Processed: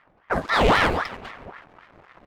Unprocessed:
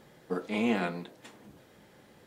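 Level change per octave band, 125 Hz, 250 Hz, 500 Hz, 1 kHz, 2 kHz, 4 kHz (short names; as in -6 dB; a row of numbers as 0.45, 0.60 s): +11.5, +2.0, +10.0, +17.0, +15.0, +15.5 dB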